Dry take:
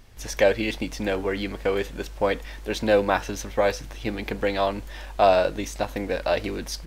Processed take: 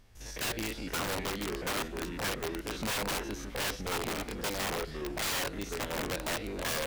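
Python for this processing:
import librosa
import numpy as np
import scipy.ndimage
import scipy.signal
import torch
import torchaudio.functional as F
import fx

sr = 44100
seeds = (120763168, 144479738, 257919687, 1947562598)

y = fx.spec_steps(x, sr, hold_ms=50)
y = fx.echo_pitch(y, sr, ms=440, semitones=-3, count=3, db_per_echo=-6.0)
y = (np.mod(10.0 ** (20.0 / 20.0) * y + 1.0, 2.0) - 1.0) / 10.0 ** (20.0 / 20.0)
y = F.gain(torch.from_numpy(y), -7.5).numpy()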